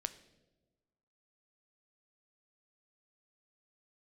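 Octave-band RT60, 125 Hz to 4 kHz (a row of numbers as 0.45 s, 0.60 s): 1.5 s, 1.5 s, 1.4 s, 1.1 s, 0.80 s, 0.80 s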